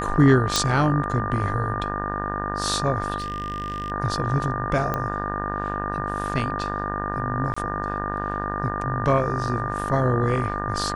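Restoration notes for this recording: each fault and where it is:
mains buzz 50 Hz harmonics 37 −30 dBFS
whistle 1,200 Hz −29 dBFS
0:00.56: click
0:03.18–0:03.92: clipping −23.5 dBFS
0:04.94: click −12 dBFS
0:07.54–0:07.57: drop-out 25 ms

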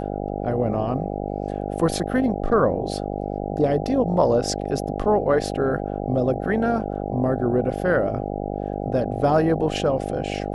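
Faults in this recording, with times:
mains buzz 50 Hz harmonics 16 −28 dBFS

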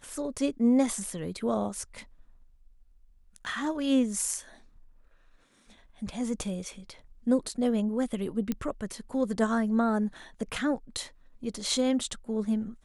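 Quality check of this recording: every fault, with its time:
0:08.52: click −16 dBFS

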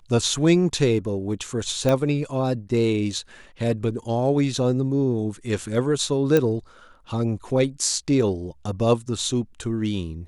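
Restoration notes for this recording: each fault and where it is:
0:01.89: click −9 dBFS
0:06.37: click −8 dBFS

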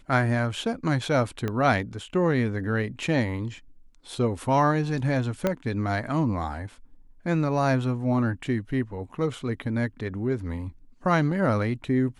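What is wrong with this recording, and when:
0:01.48: click −16 dBFS
0:05.47: click −11 dBFS

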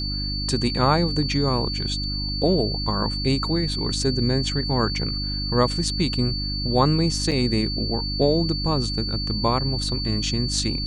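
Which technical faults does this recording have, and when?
mains hum 50 Hz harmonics 6 −29 dBFS
whistle 4,500 Hz −28 dBFS
0:07.31–0:07.32: drop-out 6.1 ms

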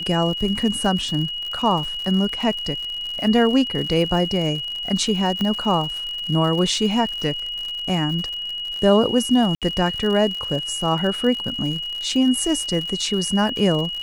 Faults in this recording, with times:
surface crackle 100 per second −28 dBFS
whistle 2,900 Hz −26 dBFS
0:05.41: click −13 dBFS
0:09.55–0:09.62: drop-out 67 ms

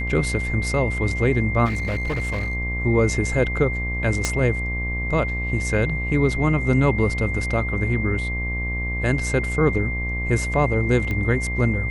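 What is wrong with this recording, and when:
mains buzz 60 Hz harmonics 20 −27 dBFS
whistle 2,100 Hz −27 dBFS
0:01.65–0:02.55: clipping −20.5 dBFS
0:04.25: click −7 dBFS
0:11.11: click −15 dBFS

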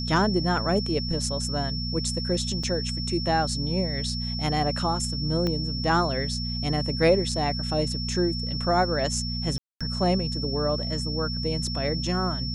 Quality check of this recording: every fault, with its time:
mains hum 60 Hz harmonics 4 −31 dBFS
whistle 5,400 Hz −32 dBFS
0:02.63: drop-out 4.8 ms
0:05.47: click −15 dBFS
0:09.58–0:09.81: drop-out 226 ms

